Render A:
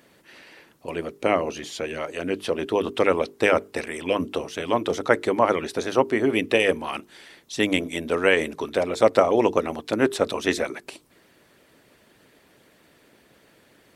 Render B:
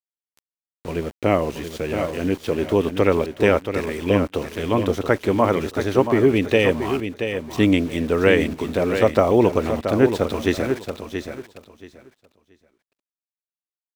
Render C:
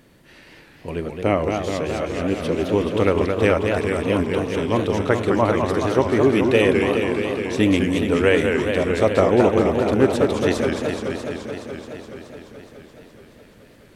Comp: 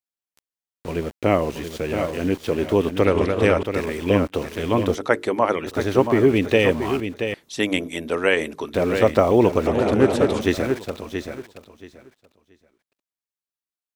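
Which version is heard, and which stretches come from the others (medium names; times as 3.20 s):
B
3.05–3.63 s: from C
4.95–5.67 s: from A
7.34–8.74 s: from A
9.67–10.41 s: from C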